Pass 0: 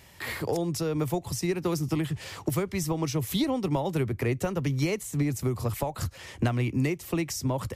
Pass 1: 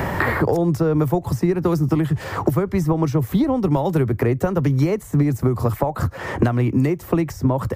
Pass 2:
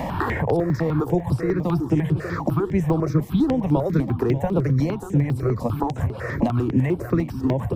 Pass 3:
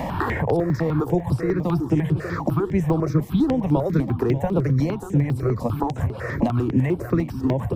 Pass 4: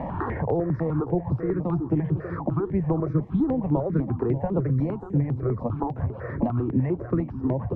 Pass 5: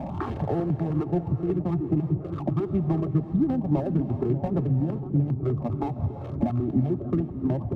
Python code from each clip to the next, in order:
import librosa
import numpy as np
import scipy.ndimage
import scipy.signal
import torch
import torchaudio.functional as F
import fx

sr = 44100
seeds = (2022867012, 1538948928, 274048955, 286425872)

y1 = fx.band_shelf(x, sr, hz=5200.0, db=-13.0, octaves=2.8)
y1 = fx.band_squash(y1, sr, depth_pct=100)
y1 = F.gain(torch.from_numpy(y1), 8.5).numpy()
y2 = fx.high_shelf(y1, sr, hz=7700.0, db=-11.0)
y2 = fx.echo_feedback(y2, sr, ms=590, feedback_pct=49, wet_db=-11.0)
y2 = fx.phaser_held(y2, sr, hz=10.0, low_hz=390.0, high_hz=6500.0)
y3 = y2
y4 = scipy.signal.sosfilt(scipy.signal.butter(2, 1300.0, 'lowpass', fs=sr, output='sos'), y3)
y4 = F.gain(torch.from_numpy(y4), -3.5).numpy()
y5 = fx.wiener(y4, sr, points=25)
y5 = fx.notch_comb(y5, sr, f0_hz=490.0)
y5 = fx.rev_gated(y5, sr, seeds[0], gate_ms=420, shape='rising', drr_db=10.5)